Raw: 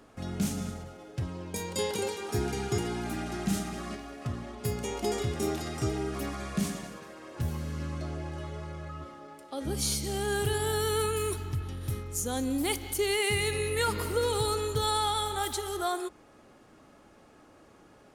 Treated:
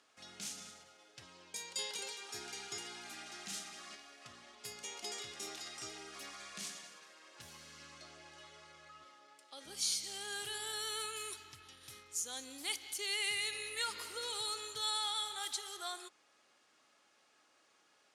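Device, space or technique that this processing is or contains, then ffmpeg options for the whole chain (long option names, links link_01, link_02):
piezo pickup straight into a mixer: -af "lowpass=5100,aderivative,volume=4dB"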